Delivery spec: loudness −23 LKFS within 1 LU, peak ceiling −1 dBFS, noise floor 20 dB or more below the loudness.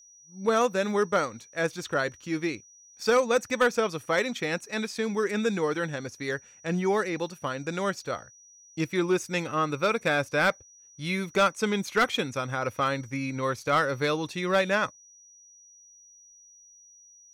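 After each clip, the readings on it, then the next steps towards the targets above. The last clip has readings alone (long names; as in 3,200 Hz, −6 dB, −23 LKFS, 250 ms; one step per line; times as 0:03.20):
share of clipped samples 0.3%; peaks flattened at −15.5 dBFS; interfering tone 5,800 Hz; level of the tone −52 dBFS; integrated loudness −27.5 LKFS; sample peak −15.5 dBFS; target loudness −23.0 LKFS
→ clipped peaks rebuilt −15.5 dBFS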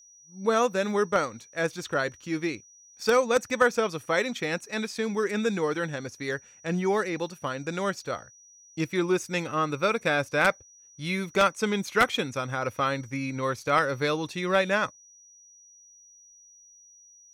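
share of clipped samples 0.0%; interfering tone 5,800 Hz; level of the tone −52 dBFS
→ notch filter 5,800 Hz, Q 30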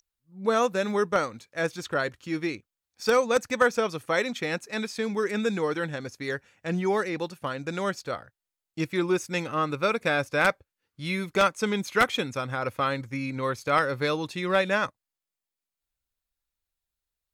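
interfering tone none found; integrated loudness −27.5 LKFS; sample peak −6.5 dBFS; target loudness −23.0 LKFS
→ level +4.5 dB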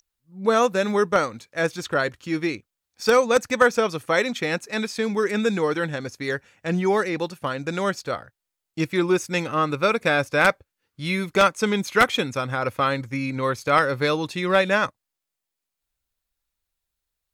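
integrated loudness −23.0 LKFS; sample peak −2.0 dBFS; background noise floor −84 dBFS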